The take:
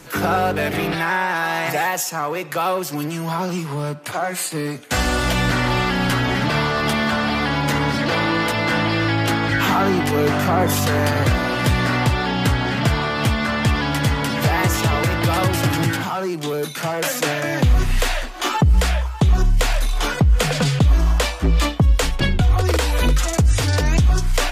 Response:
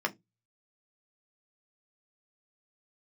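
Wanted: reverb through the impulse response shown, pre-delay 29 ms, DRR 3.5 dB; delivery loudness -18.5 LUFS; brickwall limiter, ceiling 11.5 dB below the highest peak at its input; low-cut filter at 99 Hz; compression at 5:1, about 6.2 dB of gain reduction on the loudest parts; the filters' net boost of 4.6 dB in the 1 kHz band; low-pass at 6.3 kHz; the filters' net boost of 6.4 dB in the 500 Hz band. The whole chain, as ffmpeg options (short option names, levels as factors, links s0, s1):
-filter_complex "[0:a]highpass=99,lowpass=6300,equalizer=f=500:t=o:g=7,equalizer=f=1000:t=o:g=3.5,acompressor=threshold=0.141:ratio=5,alimiter=limit=0.15:level=0:latency=1,asplit=2[s0][s1];[1:a]atrim=start_sample=2205,adelay=29[s2];[s1][s2]afir=irnorm=-1:irlink=0,volume=0.282[s3];[s0][s3]amix=inputs=2:normalize=0,volume=1.88"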